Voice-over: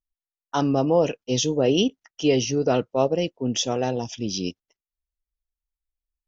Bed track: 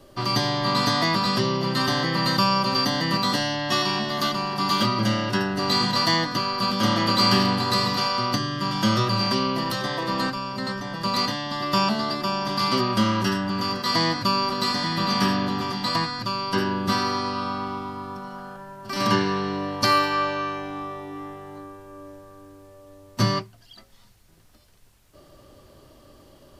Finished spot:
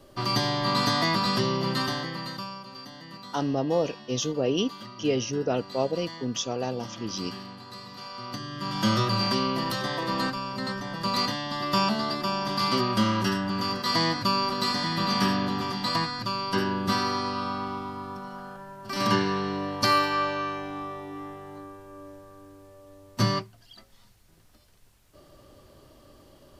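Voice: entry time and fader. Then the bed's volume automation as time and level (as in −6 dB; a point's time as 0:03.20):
2.80 s, −5.5 dB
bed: 0:01.71 −2.5 dB
0:02.66 −20.5 dB
0:07.84 −20.5 dB
0:08.87 −2.5 dB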